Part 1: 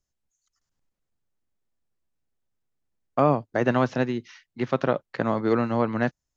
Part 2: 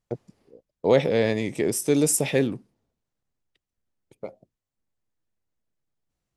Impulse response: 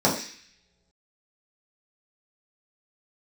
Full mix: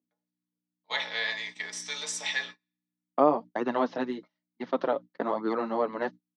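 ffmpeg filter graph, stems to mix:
-filter_complex "[0:a]flanger=delay=0.7:depth=6.7:regen=5:speed=1.1:shape=sinusoidal,volume=0dB[link_01];[1:a]highpass=frequency=1300:width=0.5412,highpass=frequency=1300:width=1.3066,aecho=1:1:4.7:0.59,aeval=exprs='val(0)+0.00562*(sin(2*PI*60*n/s)+sin(2*PI*2*60*n/s)/2+sin(2*PI*3*60*n/s)/3+sin(2*PI*4*60*n/s)/4+sin(2*PI*5*60*n/s)/5)':channel_layout=same,volume=2.5dB,asplit=2[link_02][link_03];[link_03]volume=-18.5dB[link_04];[2:a]atrim=start_sample=2205[link_05];[link_04][link_05]afir=irnorm=-1:irlink=0[link_06];[link_01][link_02][link_06]amix=inputs=3:normalize=0,agate=range=-33dB:threshold=-35dB:ratio=16:detection=peak,highpass=frequency=250:width=0.5412,highpass=frequency=250:width=1.3066,equalizer=frequency=920:width_type=q:width=4:gain=3,equalizer=frequency=1500:width_type=q:width=4:gain=-5,equalizer=frequency=2500:width_type=q:width=4:gain=-8,lowpass=frequency=5100:width=0.5412,lowpass=frequency=5100:width=1.3066"

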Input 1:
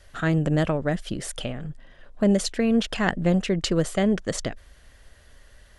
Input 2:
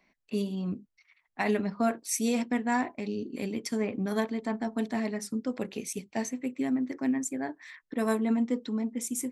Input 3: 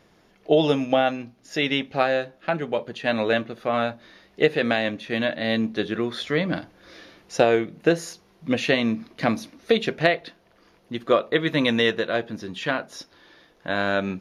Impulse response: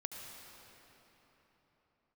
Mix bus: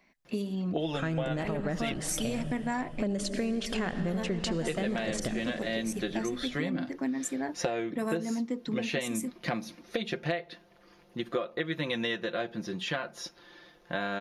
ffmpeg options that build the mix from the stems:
-filter_complex "[0:a]adelay=800,volume=-1dB,asplit=2[link_01][link_02];[link_02]volume=-4dB[link_03];[1:a]volume=2.5dB[link_04];[2:a]aecho=1:1:5.7:0.61,adelay=250,volume=-3dB,asplit=3[link_05][link_06][link_07];[link_05]atrim=end=1.94,asetpts=PTS-STARTPTS,afade=type=out:start_time=1.936:duration=0.004:curve=hsin[link_08];[link_06]atrim=start=1.94:end=4.38,asetpts=PTS-STARTPTS,volume=0[link_09];[link_07]atrim=start=4.38,asetpts=PTS-STARTPTS,afade=type=in:duration=0.004:curve=hsin[link_10];[link_08][link_09][link_10]concat=n=3:v=0:a=1[link_11];[link_01][link_04]amix=inputs=2:normalize=0,alimiter=limit=-16dB:level=0:latency=1:release=39,volume=0dB[link_12];[3:a]atrim=start_sample=2205[link_13];[link_03][link_13]afir=irnorm=-1:irlink=0[link_14];[link_11][link_12][link_14]amix=inputs=3:normalize=0,acompressor=threshold=-29dB:ratio=5"

